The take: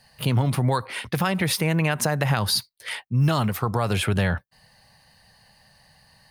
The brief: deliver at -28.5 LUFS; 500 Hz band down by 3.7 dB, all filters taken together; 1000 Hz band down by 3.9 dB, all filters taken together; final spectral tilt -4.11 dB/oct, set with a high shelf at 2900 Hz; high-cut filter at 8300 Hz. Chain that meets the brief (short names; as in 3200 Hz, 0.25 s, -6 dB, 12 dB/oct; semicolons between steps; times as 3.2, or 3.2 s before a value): LPF 8300 Hz; bell 500 Hz -3.5 dB; bell 1000 Hz -5 dB; high shelf 2900 Hz +7.5 dB; gain -5.5 dB